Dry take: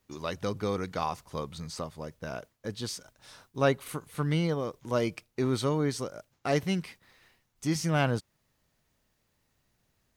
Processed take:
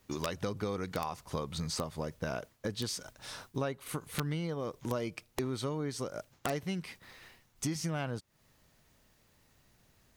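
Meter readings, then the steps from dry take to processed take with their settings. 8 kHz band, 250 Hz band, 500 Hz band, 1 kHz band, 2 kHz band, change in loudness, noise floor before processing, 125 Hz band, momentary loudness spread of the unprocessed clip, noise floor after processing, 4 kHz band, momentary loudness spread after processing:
-0.5 dB, -5.5 dB, -6.0 dB, -5.5 dB, -6.0 dB, -5.5 dB, -75 dBFS, -5.5 dB, 12 LU, -69 dBFS, -2.5 dB, 6 LU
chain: compression 8:1, threshold -39 dBFS, peak gain reduction 19.5 dB; integer overflow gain 29.5 dB; trim +7 dB

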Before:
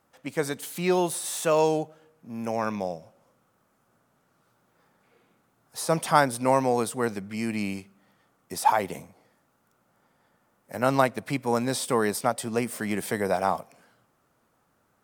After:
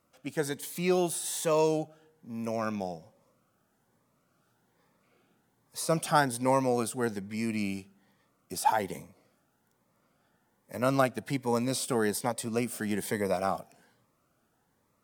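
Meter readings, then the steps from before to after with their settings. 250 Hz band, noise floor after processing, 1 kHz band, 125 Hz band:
-2.5 dB, -73 dBFS, -5.0 dB, -2.0 dB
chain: Shepard-style phaser rising 1.2 Hz; trim -2 dB

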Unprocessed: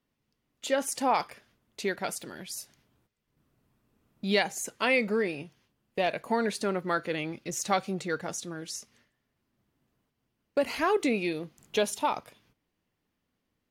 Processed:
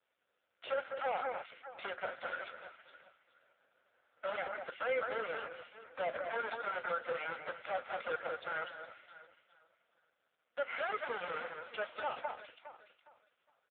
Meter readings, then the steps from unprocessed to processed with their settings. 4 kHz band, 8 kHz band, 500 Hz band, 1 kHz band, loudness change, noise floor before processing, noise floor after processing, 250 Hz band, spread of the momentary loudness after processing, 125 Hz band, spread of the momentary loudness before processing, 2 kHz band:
-13.0 dB, under -40 dB, -9.0 dB, -7.5 dB, -9.5 dB, -81 dBFS, -82 dBFS, -25.0 dB, 15 LU, -22.5 dB, 13 LU, -6.0 dB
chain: square wave that keeps the level; rippled Chebyshev high-pass 360 Hz, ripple 9 dB; compression 10:1, threshold -35 dBFS, peak gain reduction 15.5 dB; comb 1.4 ms, depth 99%; on a send: echo whose repeats swap between lows and highs 206 ms, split 2.1 kHz, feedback 54%, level -8 dB; on the sum: peak limiter -29 dBFS, peak gain reduction 9.5 dB; de-esser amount 95%; trim +5.5 dB; AMR-NB 4.75 kbps 8 kHz

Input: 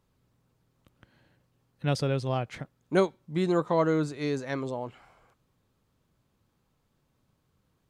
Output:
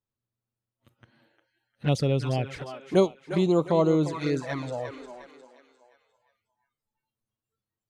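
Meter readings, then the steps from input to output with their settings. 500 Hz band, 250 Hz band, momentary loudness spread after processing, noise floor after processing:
+3.0 dB, +3.5 dB, 14 LU, under -85 dBFS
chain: thinning echo 354 ms, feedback 44%, high-pass 330 Hz, level -9 dB; touch-sensitive flanger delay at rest 9.2 ms, full sweep at -23 dBFS; spectral noise reduction 21 dB; trim +4 dB

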